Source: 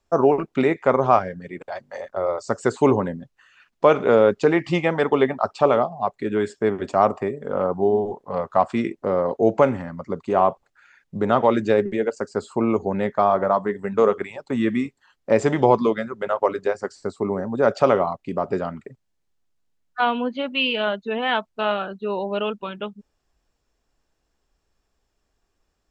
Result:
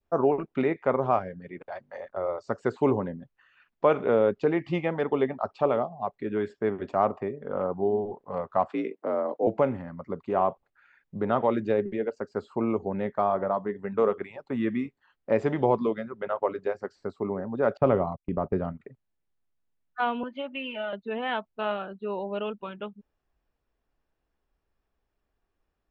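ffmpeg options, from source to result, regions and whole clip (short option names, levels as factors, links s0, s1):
-filter_complex "[0:a]asettb=1/sr,asplit=3[s0][s1][s2];[s0]atrim=end=8.704[s3];[s1]atrim=start=8.7:end=9.47,asetpts=PTS-STARTPTS,afade=t=in:d=0.004:c=qsin,afade=t=out:st=0.766:d=0.004:c=qsin,highpass=140,afreqshift=53[s4];[s2]atrim=start=9.466[s5];[s3][s4]acrossfade=d=0.004:c1=hsin:c2=qsin[s6];[s6][s5]acrossfade=d=0.004:c1=qsin:c2=hsin,asettb=1/sr,asplit=3[s7][s8][s9];[s7]atrim=end=17.774[s10];[s8]atrim=start=17.77:end=18.8,asetpts=PTS-STARTPTS,afade=t=in:d=0.004:c=qsin,afade=t=out:st=1.026:d=0.004:c=qsin,agate=range=0.0562:threshold=0.0224:ratio=16:release=100:detection=peak,aemphasis=mode=reproduction:type=bsi[s11];[s9]atrim=start=18.796[s12];[s10][s11]acrossfade=d=0.004:c1=hsin:c2=qsin[s13];[s13][s12]acrossfade=d=0.004:c1=qsin:c2=hsin,asettb=1/sr,asplit=3[s14][s15][s16];[s14]atrim=end=20.234[s17];[s15]atrim=start=20.23:end=20.93,asetpts=PTS-STARTPTS,afade=t=in:d=0.004:c=qsin,afade=t=out:st=0.696:d=0.004:c=qsin,equalizer=f=4200:w=4.5:g=-10,aecho=1:1:3.3:0.96,atrim=end_sample=30870,acrossover=split=570|1800[s18][s19][s20];[s18]acompressor=threshold=0.02:ratio=4[s21];[s19]acompressor=threshold=0.0398:ratio=4[s22];[s20]acompressor=threshold=0.0251:ratio=4[s23];[s21][s22][s23]amix=inputs=3:normalize=0[s24];[s16]atrim=start=20.926[s25];[s17][s24]acrossfade=d=0.004:c1=hsin:c2=qsin[s26];[s26][s25]acrossfade=d=0.004:c1=qsin:c2=hsin,adynamicequalizer=threshold=0.0224:dfrequency=1400:dqfactor=0.85:tfrequency=1400:tqfactor=0.85:attack=5:release=100:ratio=0.375:range=3:mode=cutabove:tftype=bell,lowpass=2900,volume=0.501"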